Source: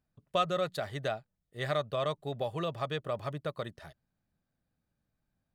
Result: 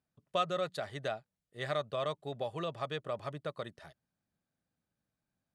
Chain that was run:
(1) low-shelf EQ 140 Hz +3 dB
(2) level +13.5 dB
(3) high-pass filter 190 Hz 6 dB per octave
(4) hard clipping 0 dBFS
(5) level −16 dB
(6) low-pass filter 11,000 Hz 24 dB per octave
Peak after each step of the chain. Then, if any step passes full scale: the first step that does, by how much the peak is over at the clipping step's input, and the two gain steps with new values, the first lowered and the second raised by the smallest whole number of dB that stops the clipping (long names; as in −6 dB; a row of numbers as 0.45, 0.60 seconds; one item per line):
−16.5, −3.0, −3.0, −3.0, −19.0, −19.0 dBFS
no step passes full scale